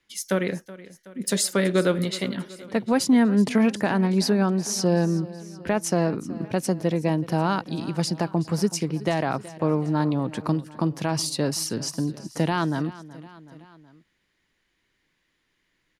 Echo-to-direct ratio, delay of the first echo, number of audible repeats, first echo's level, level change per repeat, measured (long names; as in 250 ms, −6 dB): −16.5 dB, 374 ms, 3, −18.0 dB, −4.5 dB